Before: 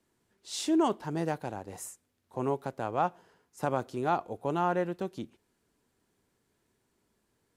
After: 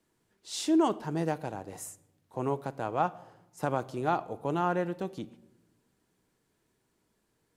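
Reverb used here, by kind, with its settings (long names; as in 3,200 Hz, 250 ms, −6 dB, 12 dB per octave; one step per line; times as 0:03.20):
rectangular room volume 3,700 cubic metres, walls furnished, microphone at 0.57 metres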